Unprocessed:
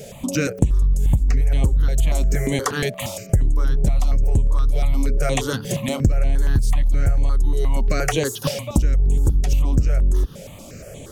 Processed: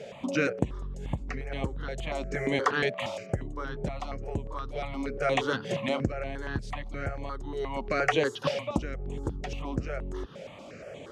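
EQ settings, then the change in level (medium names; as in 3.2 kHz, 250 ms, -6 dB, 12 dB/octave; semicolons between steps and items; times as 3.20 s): high-pass 520 Hz 6 dB/octave; low-pass 2.7 kHz 12 dB/octave; 0.0 dB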